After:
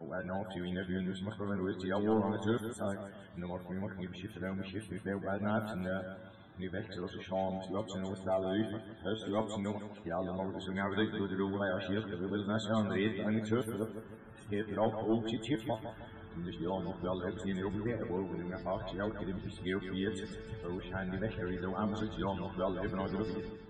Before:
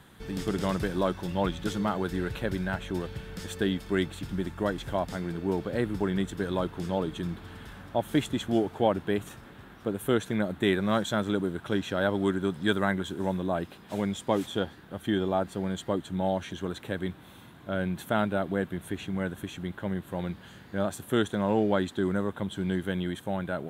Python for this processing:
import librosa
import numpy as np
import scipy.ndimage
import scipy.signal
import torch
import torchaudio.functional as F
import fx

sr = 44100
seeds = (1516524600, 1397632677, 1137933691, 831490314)

p1 = np.flip(x).copy()
p2 = fx.comb_fb(p1, sr, f0_hz=110.0, decay_s=0.26, harmonics='all', damping=0.0, mix_pct=70)
p3 = 10.0 ** (-21.0 / 20.0) * np.tanh(p2 / 10.0 ** (-21.0 / 20.0))
p4 = fx.spec_topn(p3, sr, count=64)
y = p4 + fx.echo_feedback(p4, sr, ms=156, feedback_pct=39, wet_db=-9, dry=0)